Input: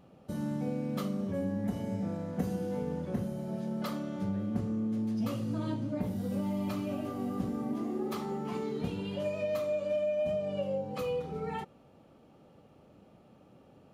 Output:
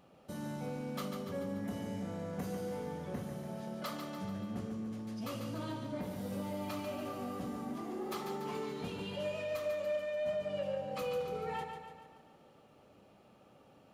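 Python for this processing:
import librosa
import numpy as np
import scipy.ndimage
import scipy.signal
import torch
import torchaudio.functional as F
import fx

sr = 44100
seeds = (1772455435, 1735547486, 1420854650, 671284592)

y = fx.low_shelf(x, sr, hz=450.0, db=-9.5)
y = 10.0 ** (-31.0 / 20.0) * np.tanh(y / 10.0 ** (-31.0 / 20.0))
y = fx.echo_feedback(y, sr, ms=144, feedback_pct=54, wet_db=-6.5)
y = y * 10.0 ** (1.0 / 20.0)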